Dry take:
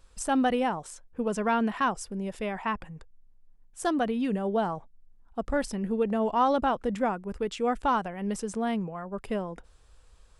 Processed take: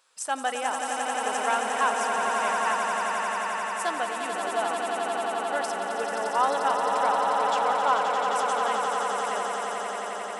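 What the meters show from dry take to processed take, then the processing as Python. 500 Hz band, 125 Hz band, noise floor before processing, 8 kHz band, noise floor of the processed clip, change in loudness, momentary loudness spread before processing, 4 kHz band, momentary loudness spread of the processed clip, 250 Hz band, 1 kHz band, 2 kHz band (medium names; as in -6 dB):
+1.0 dB, under -10 dB, -57 dBFS, +8.5 dB, -33 dBFS, +2.5 dB, 13 LU, +8.0 dB, 6 LU, -11.5 dB, +6.5 dB, +8.5 dB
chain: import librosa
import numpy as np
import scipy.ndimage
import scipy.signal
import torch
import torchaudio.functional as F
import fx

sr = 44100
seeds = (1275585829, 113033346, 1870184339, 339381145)

y = scipy.signal.sosfilt(scipy.signal.butter(2, 760.0, 'highpass', fs=sr, output='sos'), x)
y = fx.echo_swell(y, sr, ms=88, loudest=8, wet_db=-6.5)
y = y * librosa.db_to_amplitude(2.0)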